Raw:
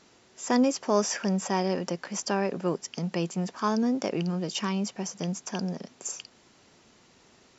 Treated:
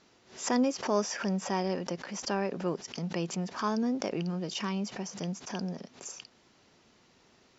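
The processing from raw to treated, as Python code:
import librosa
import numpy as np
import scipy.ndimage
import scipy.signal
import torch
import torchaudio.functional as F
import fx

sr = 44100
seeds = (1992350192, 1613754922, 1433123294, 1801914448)

y = scipy.signal.sosfilt(scipy.signal.butter(4, 6500.0, 'lowpass', fs=sr, output='sos'), x)
y = fx.pre_swell(y, sr, db_per_s=140.0)
y = F.gain(torch.from_numpy(y), -4.0).numpy()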